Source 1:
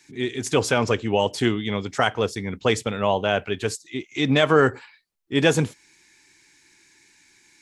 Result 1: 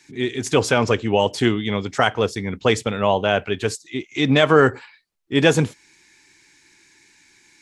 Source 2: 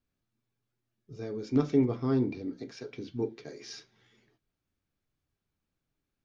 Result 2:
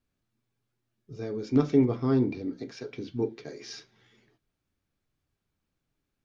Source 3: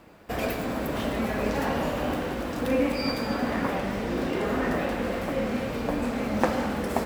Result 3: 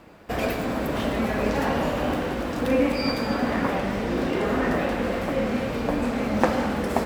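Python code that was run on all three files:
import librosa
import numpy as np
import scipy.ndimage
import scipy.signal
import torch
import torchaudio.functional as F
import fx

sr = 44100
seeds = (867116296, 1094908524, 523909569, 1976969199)

y = fx.high_shelf(x, sr, hz=9600.0, db=-5.5)
y = y * librosa.db_to_amplitude(3.0)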